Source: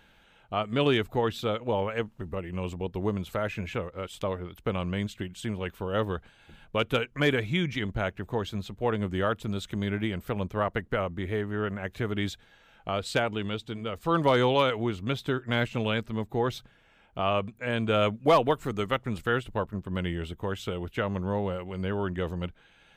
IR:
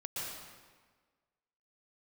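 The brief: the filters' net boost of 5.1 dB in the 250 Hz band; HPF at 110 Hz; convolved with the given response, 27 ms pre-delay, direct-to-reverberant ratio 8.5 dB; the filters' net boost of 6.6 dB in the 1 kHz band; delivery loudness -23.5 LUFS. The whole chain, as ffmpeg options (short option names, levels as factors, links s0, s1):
-filter_complex "[0:a]highpass=110,equalizer=f=250:t=o:g=6.5,equalizer=f=1000:t=o:g=8,asplit=2[s0][s1];[1:a]atrim=start_sample=2205,adelay=27[s2];[s1][s2]afir=irnorm=-1:irlink=0,volume=0.299[s3];[s0][s3]amix=inputs=2:normalize=0,volume=1.26"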